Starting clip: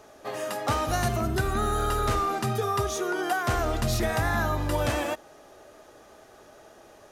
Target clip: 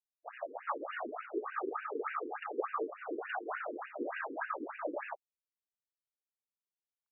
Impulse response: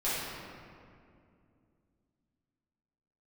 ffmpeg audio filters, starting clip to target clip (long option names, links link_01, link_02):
-af "afftfilt=real='hypot(re,im)*cos(2*PI*random(0))':imag='hypot(re,im)*sin(2*PI*random(1))':win_size=512:overlap=0.75,aeval=exprs='sgn(val(0))*max(abs(val(0))-0.00631,0)':channel_layout=same,afftfilt=real='re*between(b*sr/1024,340*pow(2100/340,0.5+0.5*sin(2*PI*3.4*pts/sr))/1.41,340*pow(2100/340,0.5+0.5*sin(2*PI*3.4*pts/sr))*1.41)':imag='im*between(b*sr/1024,340*pow(2100/340,0.5+0.5*sin(2*PI*3.4*pts/sr))/1.41,340*pow(2100/340,0.5+0.5*sin(2*PI*3.4*pts/sr))*1.41)':win_size=1024:overlap=0.75,volume=3dB"